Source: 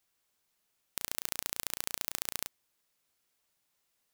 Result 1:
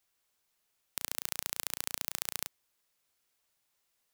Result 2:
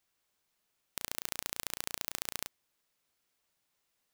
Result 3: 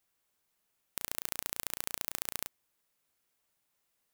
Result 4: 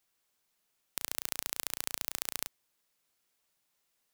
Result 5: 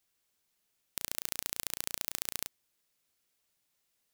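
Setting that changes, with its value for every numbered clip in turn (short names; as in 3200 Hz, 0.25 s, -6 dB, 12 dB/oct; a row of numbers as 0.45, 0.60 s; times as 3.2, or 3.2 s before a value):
bell, frequency: 200, 15000, 4800, 68, 1000 Hz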